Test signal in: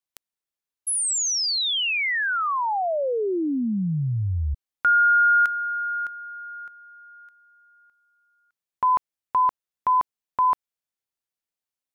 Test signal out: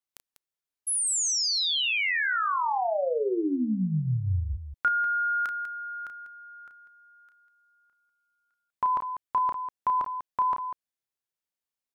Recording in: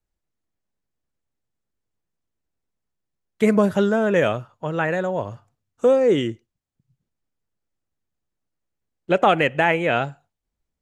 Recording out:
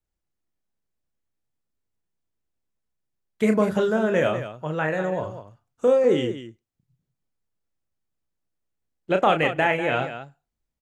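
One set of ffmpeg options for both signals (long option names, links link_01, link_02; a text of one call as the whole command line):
ffmpeg -i in.wav -af "aecho=1:1:32.07|195.3:0.447|0.282,volume=-3.5dB" out.wav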